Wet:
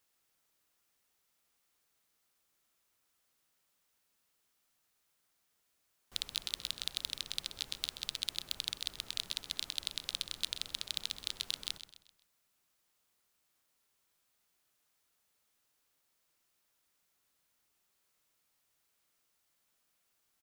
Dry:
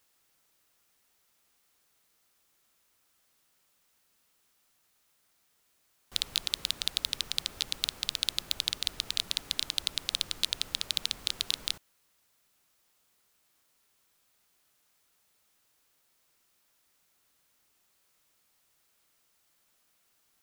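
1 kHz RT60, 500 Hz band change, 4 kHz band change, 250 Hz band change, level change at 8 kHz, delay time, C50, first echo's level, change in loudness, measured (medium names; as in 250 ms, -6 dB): no reverb, -6.5 dB, -6.5 dB, -7.0 dB, -6.5 dB, 129 ms, no reverb, -12.0 dB, -6.5 dB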